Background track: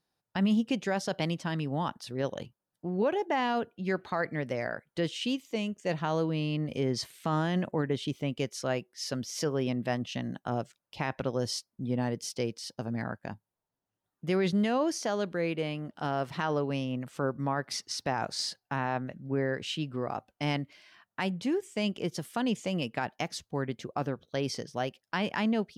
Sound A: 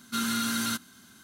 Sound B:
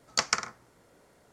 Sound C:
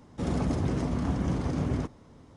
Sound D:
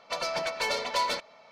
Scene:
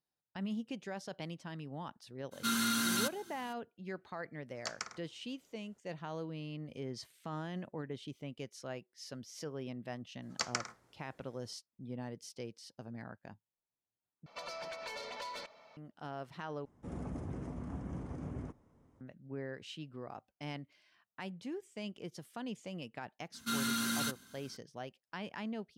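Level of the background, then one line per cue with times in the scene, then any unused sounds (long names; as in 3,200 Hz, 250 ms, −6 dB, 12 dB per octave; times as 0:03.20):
background track −12.5 dB
0:02.31: mix in A −3 dB, fades 0.02 s + low-shelf EQ 77 Hz −9 dB
0:04.48: mix in B −15 dB
0:10.22: mix in B −9.5 dB
0:14.26: overwrite with D −5.5 dB + downward compressor, threshold −35 dBFS
0:16.65: overwrite with C −13.5 dB + parametric band 4,200 Hz −12 dB 1.1 octaves
0:23.34: mix in A −5.5 dB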